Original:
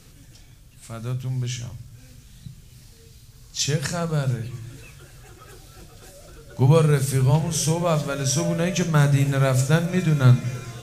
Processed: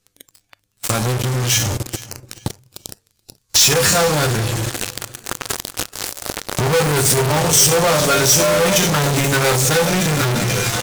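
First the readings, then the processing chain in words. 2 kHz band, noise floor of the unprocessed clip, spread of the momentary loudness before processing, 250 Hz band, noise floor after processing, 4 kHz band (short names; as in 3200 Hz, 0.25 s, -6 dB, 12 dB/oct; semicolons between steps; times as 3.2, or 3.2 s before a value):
+12.0 dB, -49 dBFS, 17 LU, +2.5 dB, -67 dBFS, +14.0 dB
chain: high shelf 3400 Hz -3 dB; resonator 100 Hz, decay 0.21 s, harmonics all, mix 90%; in parallel at -6.5 dB: fuzz box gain 45 dB, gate -46 dBFS; on the sum: notch 640 Hz, Q 12; sample leveller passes 3; compressor 6:1, threshold -23 dBFS, peak gain reduction 10.5 dB; tone controls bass -6 dB, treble +4 dB; on a send: feedback echo 0.429 s, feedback 32%, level -19 dB; on the sum: spectral noise reduction 12 dB; gain +8.5 dB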